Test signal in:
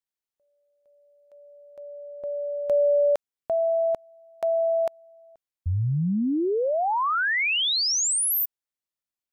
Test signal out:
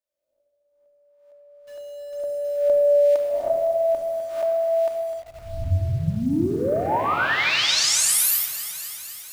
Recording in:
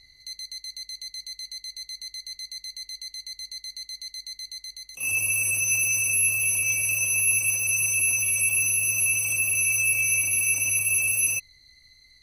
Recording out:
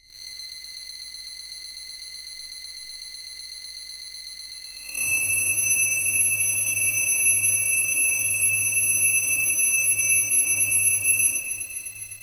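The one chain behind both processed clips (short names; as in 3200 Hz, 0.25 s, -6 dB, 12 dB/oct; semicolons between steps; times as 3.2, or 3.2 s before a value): spectral swells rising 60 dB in 0.90 s; on a send: thinning echo 0.254 s, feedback 67%, high-pass 370 Hz, level -10.5 dB; on the sum: transient shaper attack +7 dB, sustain -8 dB; bell 200 Hz -3.5 dB 0.32 oct; shoebox room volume 3700 m³, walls mixed, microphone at 2.6 m; in parallel at -7 dB: requantised 6-bit, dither none; on the sum: gain -7 dB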